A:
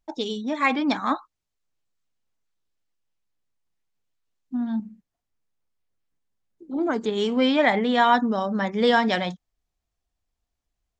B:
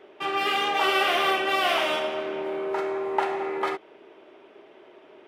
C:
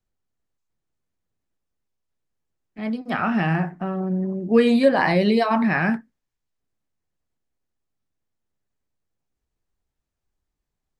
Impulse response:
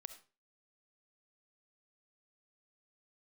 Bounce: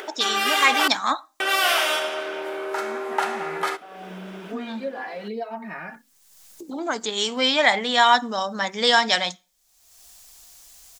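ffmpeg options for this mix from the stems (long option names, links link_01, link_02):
-filter_complex "[0:a]equalizer=frequency=380:width=1:gain=-7,volume=2.5dB,asplit=2[link_01][link_02];[link_02]volume=-12dB[link_03];[1:a]equalizer=frequency=1500:width=3.2:gain=8,volume=-2dB,asplit=3[link_04][link_05][link_06];[link_04]atrim=end=0.88,asetpts=PTS-STARTPTS,afade=type=out:start_time=0.876:duration=0.004:curve=hsin[link_07];[link_05]atrim=start=0.88:end=1.4,asetpts=PTS-STARTPTS,volume=0[link_08];[link_06]atrim=start=1.4,asetpts=PTS-STARTPTS,afade=type=in:duration=0.004:curve=hsin[link_09];[link_07][link_08][link_09]concat=n=3:v=0:a=1,asplit=2[link_10][link_11];[link_11]volume=-6dB[link_12];[2:a]lowpass=2100,aecho=1:1:4.2:0.65,asplit=2[link_13][link_14];[link_14]adelay=2.8,afreqshift=-0.88[link_15];[link_13][link_15]amix=inputs=2:normalize=1,volume=-12.5dB[link_16];[3:a]atrim=start_sample=2205[link_17];[link_03][link_12]amix=inputs=2:normalize=0[link_18];[link_18][link_17]afir=irnorm=-1:irlink=0[link_19];[link_01][link_10][link_16][link_19]amix=inputs=4:normalize=0,bass=frequency=250:gain=-15,treble=frequency=4000:gain=15,acompressor=mode=upward:threshold=-27dB:ratio=2.5"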